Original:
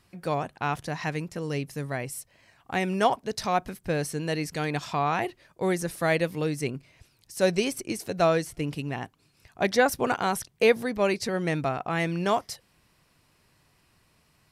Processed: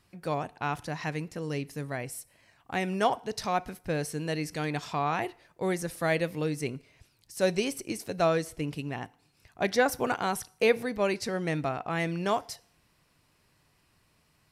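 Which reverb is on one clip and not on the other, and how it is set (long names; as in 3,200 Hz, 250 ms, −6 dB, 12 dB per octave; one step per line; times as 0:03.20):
feedback delay network reverb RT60 0.58 s, low-frequency decay 0.7×, high-frequency decay 0.95×, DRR 18.5 dB
level −3 dB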